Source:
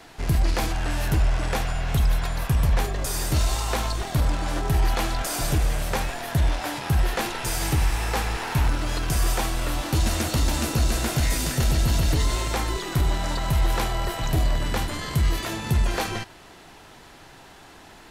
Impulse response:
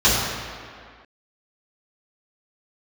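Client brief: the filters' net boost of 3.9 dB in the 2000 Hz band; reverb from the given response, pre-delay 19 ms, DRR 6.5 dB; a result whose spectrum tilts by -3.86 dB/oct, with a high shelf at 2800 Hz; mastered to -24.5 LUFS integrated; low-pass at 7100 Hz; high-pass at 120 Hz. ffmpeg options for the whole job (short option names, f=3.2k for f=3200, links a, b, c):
-filter_complex "[0:a]highpass=120,lowpass=7.1k,equalizer=f=2k:t=o:g=3.5,highshelf=f=2.8k:g=3.5,asplit=2[a][b];[1:a]atrim=start_sample=2205,adelay=19[c];[b][c]afir=irnorm=-1:irlink=0,volume=-29dB[d];[a][d]amix=inputs=2:normalize=0,volume=1dB"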